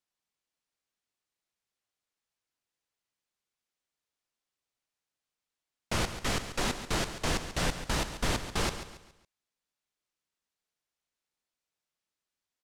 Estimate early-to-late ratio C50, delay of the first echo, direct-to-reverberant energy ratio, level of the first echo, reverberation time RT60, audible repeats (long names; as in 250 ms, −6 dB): no reverb audible, 139 ms, no reverb audible, −11.0 dB, no reverb audible, 3